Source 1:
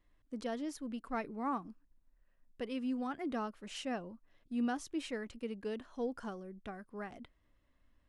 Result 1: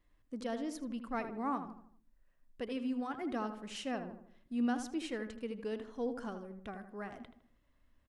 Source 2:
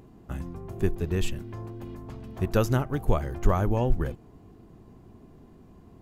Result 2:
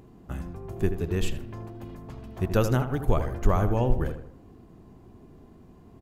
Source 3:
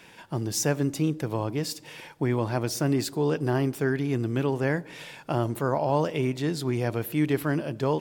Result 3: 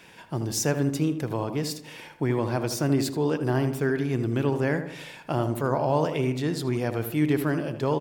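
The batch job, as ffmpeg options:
-filter_complex "[0:a]asplit=2[a][b];[b]adelay=79,lowpass=f=2.1k:p=1,volume=-8.5dB,asplit=2[c][d];[d]adelay=79,lowpass=f=2.1k:p=1,volume=0.46,asplit=2[e][f];[f]adelay=79,lowpass=f=2.1k:p=1,volume=0.46,asplit=2[g][h];[h]adelay=79,lowpass=f=2.1k:p=1,volume=0.46,asplit=2[i][j];[j]adelay=79,lowpass=f=2.1k:p=1,volume=0.46[k];[a][c][e][g][i][k]amix=inputs=6:normalize=0"

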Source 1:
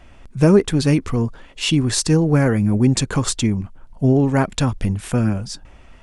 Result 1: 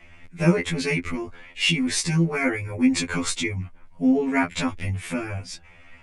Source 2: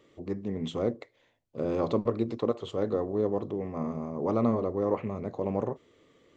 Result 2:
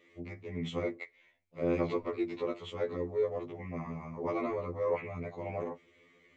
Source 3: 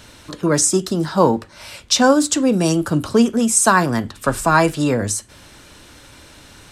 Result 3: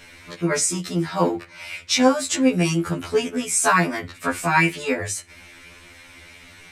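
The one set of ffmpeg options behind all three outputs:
-af "equalizer=f=2.2k:t=o:w=0.52:g=15,afftfilt=real='re*2*eq(mod(b,4),0)':imag='im*2*eq(mod(b,4),0)':win_size=2048:overlap=0.75,volume=-3dB"

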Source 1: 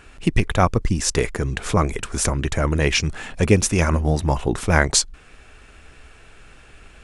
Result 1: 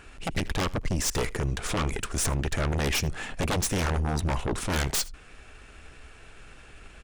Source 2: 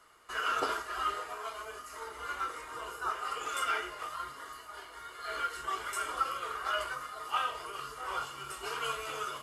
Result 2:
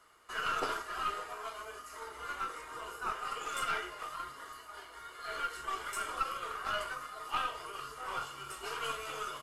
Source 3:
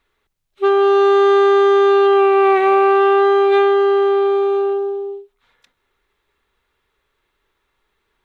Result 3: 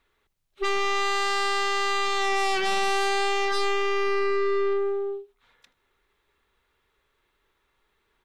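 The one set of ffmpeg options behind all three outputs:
-af "aeval=exprs='0.15*(abs(mod(val(0)/0.15+3,4)-2)-1)':c=same,aecho=1:1:79:0.0708,aeval=exprs='(tanh(12.6*val(0)+0.5)-tanh(0.5))/12.6':c=same"

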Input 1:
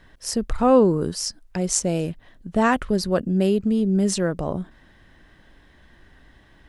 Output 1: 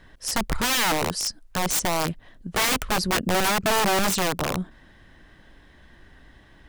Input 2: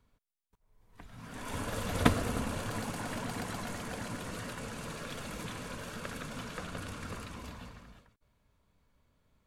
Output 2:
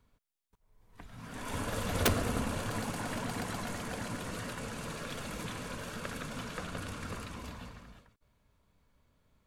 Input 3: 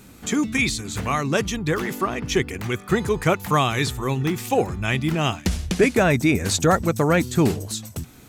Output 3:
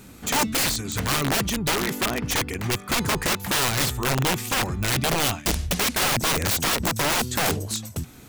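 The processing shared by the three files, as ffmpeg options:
-af "aeval=exprs='(mod(7.94*val(0)+1,2)-1)/7.94':c=same,volume=1dB"

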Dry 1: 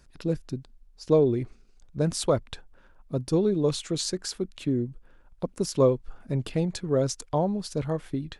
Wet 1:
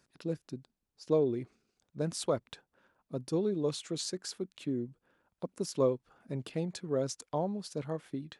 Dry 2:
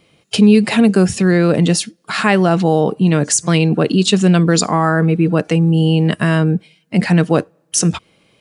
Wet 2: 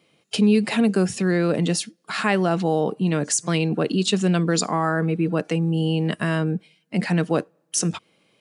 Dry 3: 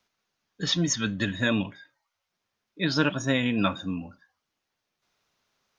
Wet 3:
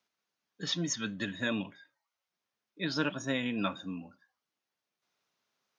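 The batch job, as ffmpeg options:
-af "highpass=150,volume=-7dB"

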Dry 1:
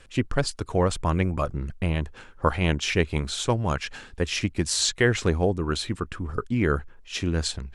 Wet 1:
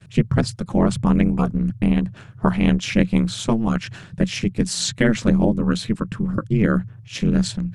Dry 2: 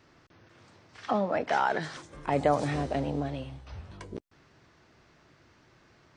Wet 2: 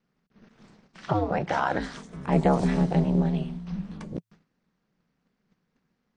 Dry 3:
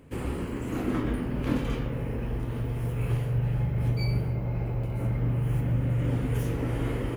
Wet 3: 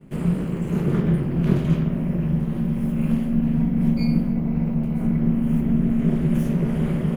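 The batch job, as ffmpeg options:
-af "aeval=exprs='val(0)*sin(2*PI*110*n/s)':c=same,agate=range=-19dB:threshold=-59dB:ratio=16:detection=peak,equalizer=f=170:w=1.6:g=14.5,volume=3dB"

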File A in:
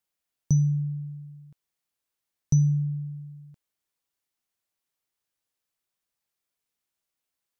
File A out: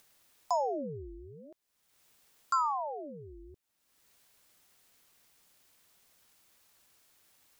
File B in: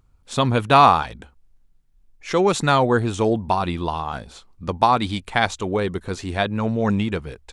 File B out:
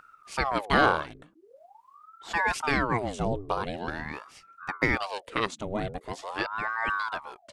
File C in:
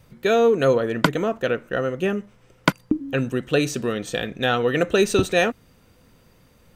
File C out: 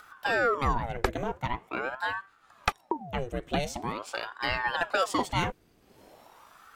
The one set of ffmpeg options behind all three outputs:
-af "acompressor=mode=upward:threshold=-35dB:ratio=2.5,aeval=exprs='val(0)*sin(2*PI*780*n/s+780*0.75/0.44*sin(2*PI*0.44*n/s))':c=same,volume=-6dB"

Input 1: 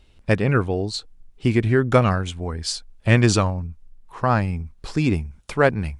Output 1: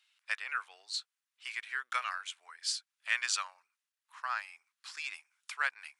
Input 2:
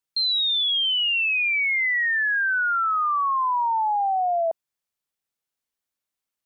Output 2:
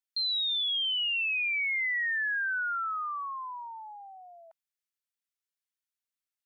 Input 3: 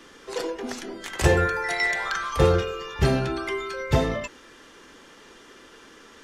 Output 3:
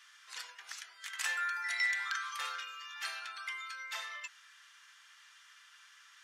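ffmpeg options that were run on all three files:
-af "highpass=f=1.3k:w=0.5412,highpass=f=1.3k:w=1.3066,volume=-7dB"

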